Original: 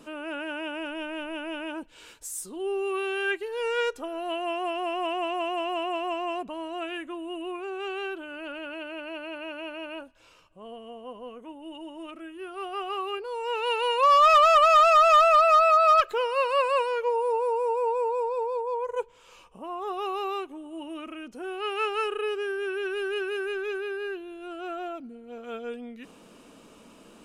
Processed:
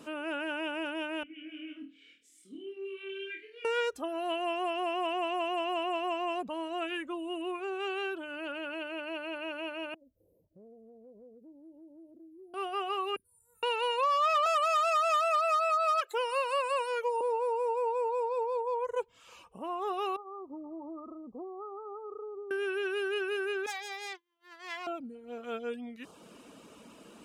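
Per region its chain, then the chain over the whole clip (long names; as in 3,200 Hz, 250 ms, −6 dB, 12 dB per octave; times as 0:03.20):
0:01.23–0:03.65: formant filter i + flutter between parallel walls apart 4.4 metres, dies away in 0.64 s
0:09.94–0:12.54: inverse Chebyshev band-stop filter 1,200–6,900 Hz, stop band 50 dB + downward compressor 3 to 1, threshold −53 dBFS
0:13.16–0:13.63: inverse Chebyshev band-stop filter 400–5,500 Hz + flutter between parallel walls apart 5.7 metres, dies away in 0.27 s
0:14.46–0:17.21: high-pass filter 440 Hz 24 dB per octave + parametric band 9,800 Hz +9 dB 1.1 octaves
0:20.16–0:22.51: downward compressor 4 to 1, threshold −38 dBFS + linear-phase brick-wall low-pass 1,300 Hz
0:23.66–0:24.87: phase distortion by the signal itself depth 0.6 ms + high-pass filter 660 Hz + downward expander −37 dBFS
whole clip: high-pass filter 63 Hz; reverb reduction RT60 0.51 s; downward compressor 3 to 1, threshold −28 dBFS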